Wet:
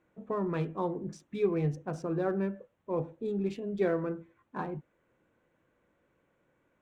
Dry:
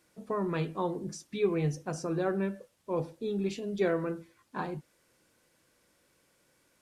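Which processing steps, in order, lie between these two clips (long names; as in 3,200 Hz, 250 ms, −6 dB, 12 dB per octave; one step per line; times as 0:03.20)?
adaptive Wiener filter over 9 samples
high-shelf EQ 2,900 Hz −9 dB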